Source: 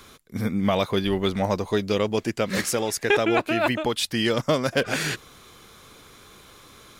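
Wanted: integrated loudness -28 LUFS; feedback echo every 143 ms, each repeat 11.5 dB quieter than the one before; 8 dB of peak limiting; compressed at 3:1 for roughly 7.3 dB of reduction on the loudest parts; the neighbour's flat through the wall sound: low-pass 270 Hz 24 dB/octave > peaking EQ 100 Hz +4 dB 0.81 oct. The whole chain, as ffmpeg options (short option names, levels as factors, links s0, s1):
-af "acompressor=threshold=0.0447:ratio=3,alimiter=limit=0.0841:level=0:latency=1,lowpass=f=270:w=0.5412,lowpass=f=270:w=1.3066,equalizer=f=100:t=o:w=0.81:g=4,aecho=1:1:143|286|429:0.266|0.0718|0.0194,volume=2.66"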